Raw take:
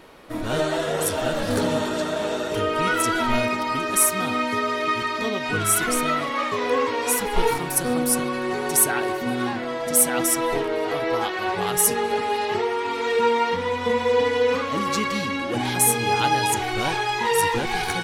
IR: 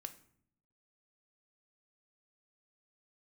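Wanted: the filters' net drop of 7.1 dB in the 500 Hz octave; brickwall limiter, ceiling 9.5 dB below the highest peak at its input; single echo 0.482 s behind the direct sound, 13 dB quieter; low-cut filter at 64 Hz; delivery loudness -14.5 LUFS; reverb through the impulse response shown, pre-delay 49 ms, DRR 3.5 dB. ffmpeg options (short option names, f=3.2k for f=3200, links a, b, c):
-filter_complex "[0:a]highpass=64,equalizer=f=500:t=o:g=-8.5,alimiter=limit=-16dB:level=0:latency=1,aecho=1:1:482:0.224,asplit=2[a][b];[1:a]atrim=start_sample=2205,adelay=49[c];[b][c]afir=irnorm=-1:irlink=0,volume=1dB[d];[a][d]amix=inputs=2:normalize=0,volume=9.5dB"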